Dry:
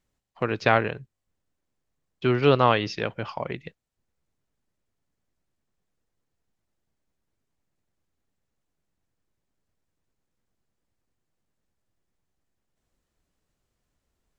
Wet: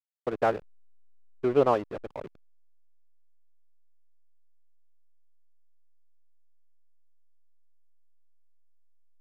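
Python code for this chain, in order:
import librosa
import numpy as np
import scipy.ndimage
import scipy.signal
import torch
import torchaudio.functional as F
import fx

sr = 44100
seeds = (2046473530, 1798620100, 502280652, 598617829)

y = fx.bandpass_q(x, sr, hz=520.0, q=0.91)
y = fx.stretch_vocoder(y, sr, factor=0.64)
y = fx.backlash(y, sr, play_db=-30.5)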